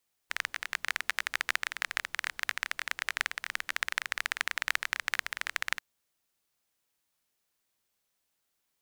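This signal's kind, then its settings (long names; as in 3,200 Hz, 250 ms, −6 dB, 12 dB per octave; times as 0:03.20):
rain-like ticks over hiss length 5.49 s, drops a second 20, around 1,800 Hz, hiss −28.5 dB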